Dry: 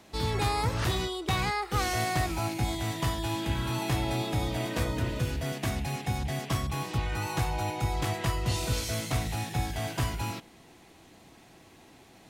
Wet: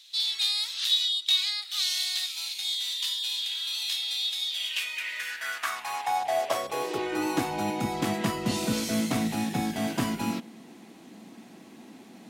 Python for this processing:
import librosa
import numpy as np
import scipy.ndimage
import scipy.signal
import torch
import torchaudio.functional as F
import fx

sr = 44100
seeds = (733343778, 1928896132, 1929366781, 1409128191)

y = fx.filter_sweep_highpass(x, sr, from_hz=3700.0, to_hz=220.0, start_s=4.48, end_s=7.62, q=5.0)
y = y * librosa.db_to_amplitude(1.5)